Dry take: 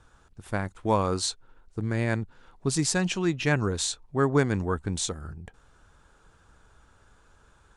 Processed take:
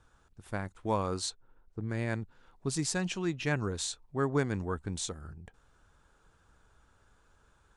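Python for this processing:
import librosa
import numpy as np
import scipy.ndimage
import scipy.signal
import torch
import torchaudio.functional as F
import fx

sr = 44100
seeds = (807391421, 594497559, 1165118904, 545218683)

y = fx.lowpass(x, sr, hz=1400.0, slope=6, at=(1.29, 1.88), fade=0.02)
y = y * 10.0 ** (-6.5 / 20.0)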